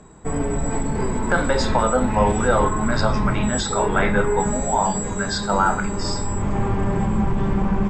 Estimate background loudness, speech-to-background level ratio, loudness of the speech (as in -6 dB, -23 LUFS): -24.0 LUFS, 1.0 dB, -23.0 LUFS